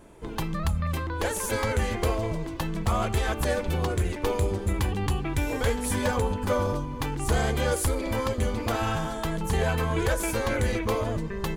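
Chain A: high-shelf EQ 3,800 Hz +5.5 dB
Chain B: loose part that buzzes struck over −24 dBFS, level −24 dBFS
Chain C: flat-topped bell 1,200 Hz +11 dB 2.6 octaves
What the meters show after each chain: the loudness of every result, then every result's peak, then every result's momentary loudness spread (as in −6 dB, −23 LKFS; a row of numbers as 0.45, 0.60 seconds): −27.0, −27.5, −21.5 LKFS; −13.5, −14.0, −6.0 dBFS; 5, 5, 6 LU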